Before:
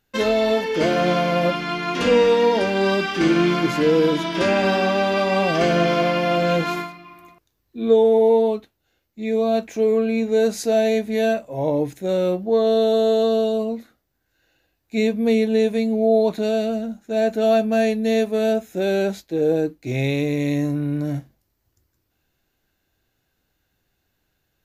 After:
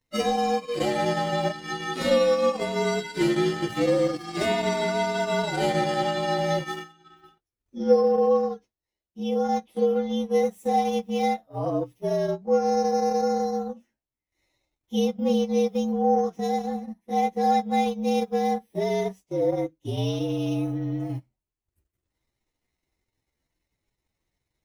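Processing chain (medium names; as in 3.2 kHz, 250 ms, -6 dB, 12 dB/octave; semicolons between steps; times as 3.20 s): frequency axis rescaled in octaves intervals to 115%; transient shaper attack +4 dB, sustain -11 dB; trim -4.5 dB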